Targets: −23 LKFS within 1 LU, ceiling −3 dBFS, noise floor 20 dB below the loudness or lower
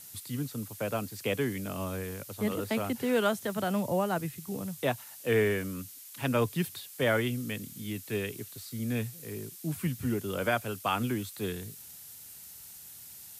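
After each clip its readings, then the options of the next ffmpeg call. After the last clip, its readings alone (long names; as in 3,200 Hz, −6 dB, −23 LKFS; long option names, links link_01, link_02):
background noise floor −48 dBFS; target noise floor −53 dBFS; integrated loudness −32.5 LKFS; sample peak −15.0 dBFS; target loudness −23.0 LKFS
→ -af "afftdn=noise_reduction=6:noise_floor=-48"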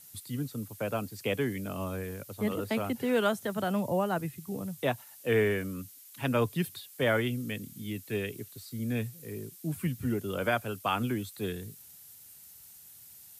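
background noise floor −53 dBFS; integrated loudness −32.5 LKFS; sample peak −15.0 dBFS; target loudness −23.0 LKFS
→ -af "volume=9.5dB"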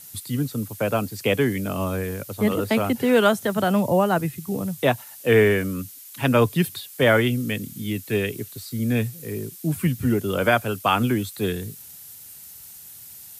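integrated loudness −23.0 LKFS; sample peak −5.5 dBFS; background noise floor −43 dBFS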